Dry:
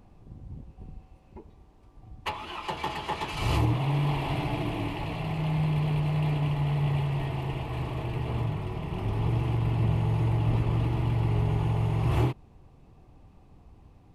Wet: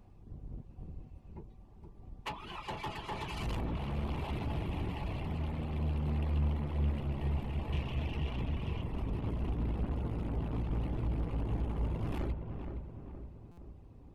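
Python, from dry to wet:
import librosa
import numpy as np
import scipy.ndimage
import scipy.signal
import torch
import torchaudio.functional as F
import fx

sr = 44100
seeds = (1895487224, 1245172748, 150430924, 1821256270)

y = fx.octave_divider(x, sr, octaves=1, level_db=3.0)
y = fx.peak_eq(y, sr, hz=2900.0, db=10.5, octaves=0.83, at=(7.72, 8.82))
y = 10.0 ** (-25.5 / 20.0) * np.tanh(y / 10.0 ** (-25.5 / 20.0))
y = fx.rev_spring(y, sr, rt60_s=2.7, pass_ms=(40, 50), chirp_ms=65, drr_db=9.0)
y = fx.dereverb_blind(y, sr, rt60_s=0.71)
y = fx.echo_filtered(y, sr, ms=468, feedback_pct=54, hz=1500.0, wet_db=-6.5)
y = fx.buffer_glitch(y, sr, at_s=(13.51,), block=256, repeats=10)
y = y * librosa.db_to_amplitude(-5.5)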